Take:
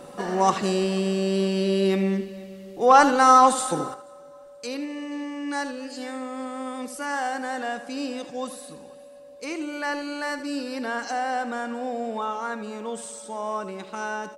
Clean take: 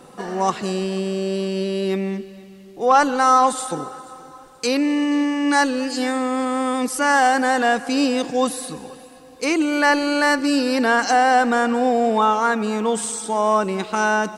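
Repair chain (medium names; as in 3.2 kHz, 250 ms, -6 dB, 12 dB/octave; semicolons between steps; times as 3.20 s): band-stop 570 Hz, Q 30; inverse comb 77 ms -12 dB; trim 0 dB, from 3.94 s +12 dB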